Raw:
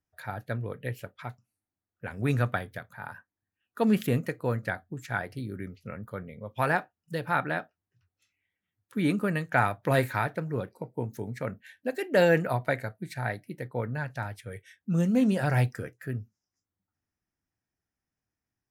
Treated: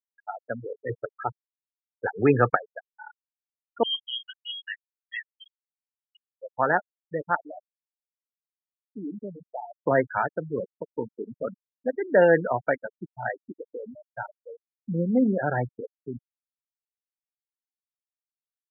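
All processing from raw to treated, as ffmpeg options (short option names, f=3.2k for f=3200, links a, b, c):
-filter_complex "[0:a]asettb=1/sr,asplit=3[a][b][c];[a]atrim=end=0.894[d];[b]atrim=start=0.89:end=2.55,asetpts=PTS-STARTPTS,afade=t=in:d=0.004:c=qsin,afade=t=out:st=1.656:d=0.004:c=qsin,acontrast=78,lowpass=2.5k,aecho=1:1:2.4:0.45,atrim=end_sample=73206[e];[c]atrim=start=2.546[f];[d][e]acrossfade=d=0.004:c1=hsin:c2=qsin[g];[g][f]acrossfade=d=0.004:c1=qsin:c2=hsin,asettb=1/sr,asplit=3[h][i][j];[h]atrim=end=3.834[k];[i]atrim=start=3.83:end=6.29,asetpts=PTS-STARTPTS,afade=t=in:d=0.004:c=qsin,afade=t=out:st=2.456:d=0.004:c=qsin,flanger=delay=16.5:depth=3.2:speed=2.9,lowpass=f=2.9k:t=q:w=0.5098,lowpass=f=2.9k:t=q:w=0.6013,lowpass=f=2.9k:t=q:w=0.9,lowpass=f=2.9k:t=q:w=2.563,afreqshift=-3400[l];[j]atrim=start=6.286[m];[k][l]acrossfade=d=0.004:c1=hsin:c2=qsin[n];[n][m]acrossfade=d=0.004:c1=qsin:c2=hsin,asettb=1/sr,asplit=3[o][p][q];[o]atrim=end=7.354[r];[p]atrim=start=7.35:end=9.8,asetpts=PTS-STARTPTS,afade=t=in:d=0.004:c=qsin,afade=t=out:st=2.446:d=0.004:c=qsin,lowpass=f=1.1k:w=0.5412,lowpass=f=1.1k:w=1.3066,acompressor=threshold=-41dB:ratio=2:attack=3.2:release=140:knee=1:detection=peak,aecho=1:1:403:0.0841,atrim=end_sample=108045[s];[q]atrim=start=9.796[t];[r][s]acrossfade=d=0.004:c1=hsin:c2=qsin[u];[u][t]acrossfade=d=0.004:c1=qsin:c2=hsin,asettb=1/sr,asplit=3[v][w][x];[v]atrim=end=13.334[y];[w]atrim=start=13.33:end=14.15,asetpts=PTS-STARTPTS,afade=t=in:d=0.004:c=qsin,afade=t=out:st=0.816:d=0.004:c=qsin,equalizer=f=320:w=0.36:g=10,acompressor=threshold=-38dB:ratio=3:attack=3.2:release=140:knee=1:detection=peak[z];[x]atrim=start=14.146[aa];[y][z]acrossfade=d=0.004:c1=hsin:c2=qsin[ab];[ab][aa]acrossfade=d=0.004:c1=qsin:c2=hsin,acrossover=split=200 2500:gain=0.158 1 0.0708[ac][ad][ae];[ac][ad][ae]amix=inputs=3:normalize=0,afftfilt=real='re*gte(hypot(re,im),0.0562)':imag='im*gte(hypot(re,im),0.0562)':win_size=1024:overlap=0.75,volume=4.5dB"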